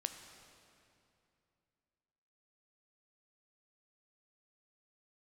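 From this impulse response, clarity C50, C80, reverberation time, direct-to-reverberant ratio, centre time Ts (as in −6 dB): 7.5 dB, 8.5 dB, 2.7 s, 6.5 dB, 36 ms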